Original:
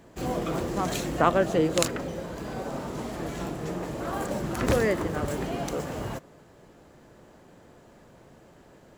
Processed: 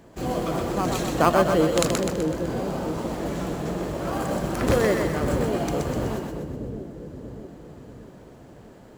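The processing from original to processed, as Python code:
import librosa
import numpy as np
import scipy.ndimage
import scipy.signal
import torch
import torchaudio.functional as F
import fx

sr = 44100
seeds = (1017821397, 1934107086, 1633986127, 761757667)

p1 = fx.sample_hold(x, sr, seeds[0], rate_hz=3700.0, jitter_pct=0)
p2 = x + F.gain(torch.from_numpy(p1), -9.0).numpy()
y = fx.echo_split(p2, sr, split_hz=480.0, low_ms=635, high_ms=126, feedback_pct=52, wet_db=-4)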